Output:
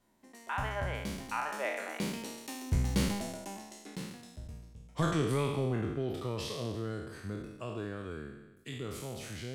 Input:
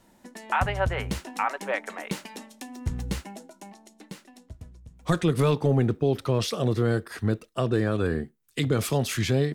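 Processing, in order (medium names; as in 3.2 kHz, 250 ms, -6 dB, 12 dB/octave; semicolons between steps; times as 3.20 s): spectral sustain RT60 1.07 s; Doppler pass-by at 3.34 s, 19 m/s, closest 14 m; trim -1 dB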